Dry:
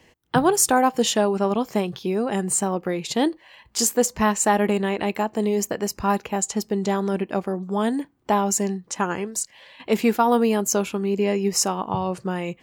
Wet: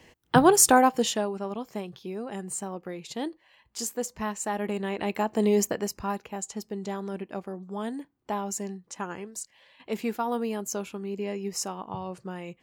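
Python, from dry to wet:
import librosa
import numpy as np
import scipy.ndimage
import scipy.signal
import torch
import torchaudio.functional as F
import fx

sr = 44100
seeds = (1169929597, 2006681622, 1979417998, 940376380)

y = fx.gain(x, sr, db=fx.line((0.74, 0.5), (1.4, -11.5), (4.5, -11.5), (5.55, 0.5), (6.17, -10.5)))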